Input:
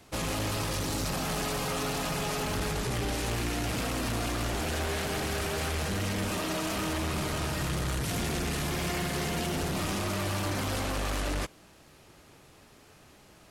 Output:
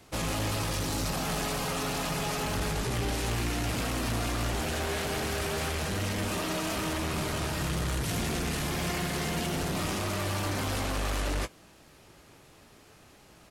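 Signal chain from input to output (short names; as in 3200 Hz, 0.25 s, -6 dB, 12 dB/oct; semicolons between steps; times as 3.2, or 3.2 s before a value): doubler 18 ms -11.5 dB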